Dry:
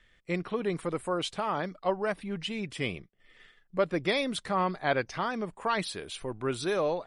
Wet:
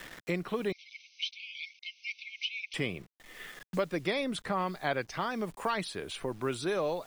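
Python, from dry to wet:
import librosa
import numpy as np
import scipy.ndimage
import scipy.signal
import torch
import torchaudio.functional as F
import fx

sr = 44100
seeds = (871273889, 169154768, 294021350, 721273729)

y = fx.quant_dither(x, sr, seeds[0], bits=10, dither='none')
y = fx.brickwall_bandpass(y, sr, low_hz=2100.0, high_hz=6300.0, at=(0.72, 2.74))
y = fx.band_squash(y, sr, depth_pct=70)
y = F.gain(torch.from_numpy(y), -2.5).numpy()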